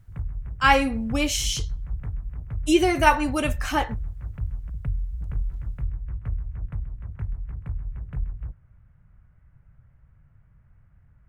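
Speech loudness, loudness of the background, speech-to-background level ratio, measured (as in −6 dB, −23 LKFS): −22.5 LKFS, −34.0 LKFS, 11.5 dB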